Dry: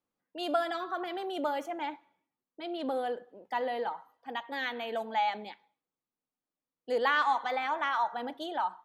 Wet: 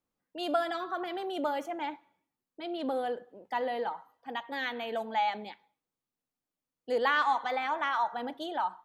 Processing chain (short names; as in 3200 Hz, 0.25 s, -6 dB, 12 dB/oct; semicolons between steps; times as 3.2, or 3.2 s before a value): low shelf 110 Hz +8.5 dB